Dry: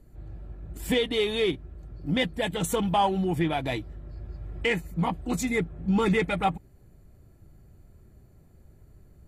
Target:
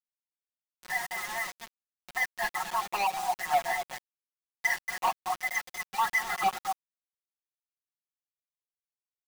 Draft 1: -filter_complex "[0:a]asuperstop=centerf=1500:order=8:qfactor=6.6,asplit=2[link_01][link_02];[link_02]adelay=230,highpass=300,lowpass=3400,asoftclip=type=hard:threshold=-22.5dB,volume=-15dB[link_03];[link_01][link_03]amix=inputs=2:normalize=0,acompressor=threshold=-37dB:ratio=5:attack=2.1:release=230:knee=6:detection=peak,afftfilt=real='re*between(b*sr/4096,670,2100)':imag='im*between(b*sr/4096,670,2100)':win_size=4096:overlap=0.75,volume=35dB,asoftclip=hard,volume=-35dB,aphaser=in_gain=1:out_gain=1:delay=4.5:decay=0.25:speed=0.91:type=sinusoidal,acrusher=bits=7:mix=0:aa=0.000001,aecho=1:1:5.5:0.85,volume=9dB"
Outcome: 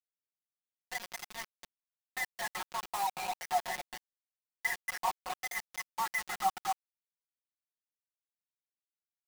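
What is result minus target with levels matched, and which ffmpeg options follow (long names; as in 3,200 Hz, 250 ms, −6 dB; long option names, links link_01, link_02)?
downward compressor: peak gain reduction +9 dB
-filter_complex "[0:a]asuperstop=centerf=1500:order=8:qfactor=6.6,asplit=2[link_01][link_02];[link_02]adelay=230,highpass=300,lowpass=3400,asoftclip=type=hard:threshold=-22.5dB,volume=-15dB[link_03];[link_01][link_03]amix=inputs=2:normalize=0,acompressor=threshold=-26dB:ratio=5:attack=2.1:release=230:knee=6:detection=peak,afftfilt=real='re*between(b*sr/4096,670,2100)':imag='im*between(b*sr/4096,670,2100)':win_size=4096:overlap=0.75,volume=35dB,asoftclip=hard,volume=-35dB,aphaser=in_gain=1:out_gain=1:delay=4.5:decay=0.25:speed=0.91:type=sinusoidal,acrusher=bits=7:mix=0:aa=0.000001,aecho=1:1:5.5:0.85,volume=9dB"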